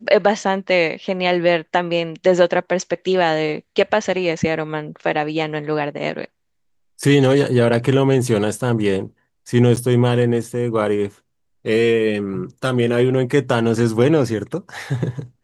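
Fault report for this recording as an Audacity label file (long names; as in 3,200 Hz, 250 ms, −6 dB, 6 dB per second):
9.760000	9.770000	drop-out 9.3 ms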